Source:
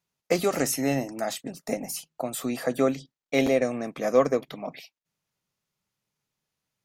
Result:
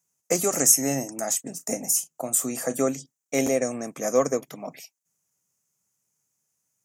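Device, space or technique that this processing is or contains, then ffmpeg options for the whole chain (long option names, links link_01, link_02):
budget condenser microphone: -filter_complex "[0:a]asettb=1/sr,asplit=3[link_01][link_02][link_03];[link_01]atrim=end=1.444[link_04];[link_02]atrim=start=1.44:end=2.82,asetpts=PTS-STARTPTS,afade=type=in:duration=0.004:curve=qsin,afade=type=out:start_time=1.376:duration=0.004:curve=qsin,asplit=2[link_05][link_06];[link_06]adelay=35,volume=-14dB[link_07];[link_05][link_07]amix=inputs=2:normalize=0,atrim=end_sample=60858[link_08];[link_03]atrim=start=2.816[link_09];[link_04][link_08]acrossfade=duration=0.004:curve1=hsin:curve2=qsin[link_10];[link_10][link_09]acrossfade=duration=0.004:curve1=qsin:curve2=hsin,highpass=73,highshelf=frequency=5200:width_type=q:width=3:gain=9.5,volume=-1dB"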